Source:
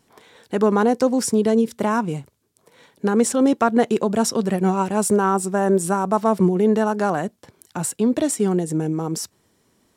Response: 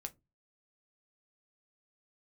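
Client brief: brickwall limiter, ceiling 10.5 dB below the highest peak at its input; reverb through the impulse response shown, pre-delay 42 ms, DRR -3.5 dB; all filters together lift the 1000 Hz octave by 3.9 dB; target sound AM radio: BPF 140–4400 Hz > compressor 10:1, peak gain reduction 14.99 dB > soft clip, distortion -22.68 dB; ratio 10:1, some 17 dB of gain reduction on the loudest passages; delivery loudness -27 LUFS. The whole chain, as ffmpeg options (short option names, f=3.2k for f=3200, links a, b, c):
-filter_complex "[0:a]equalizer=f=1k:t=o:g=5,acompressor=threshold=-29dB:ratio=10,alimiter=level_in=1dB:limit=-24dB:level=0:latency=1,volume=-1dB,asplit=2[a][b];[1:a]atrim=start_sample=2205,adelay=42[c];[b][c]afir=irnorm=-1:irlink=0,volume=7dB[d];[a][d]amix=inputs=2:normalize=0,highpass=140,lowpass=4.4k,acompressor=threshold=-37dB:ratio=10,asoftclip=threshold=-30.5dB,volume=15.5dB"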